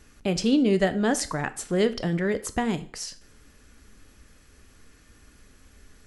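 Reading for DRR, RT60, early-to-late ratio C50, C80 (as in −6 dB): 12.0 dB, 0.50 s, 17.5 dB, 21.5 dB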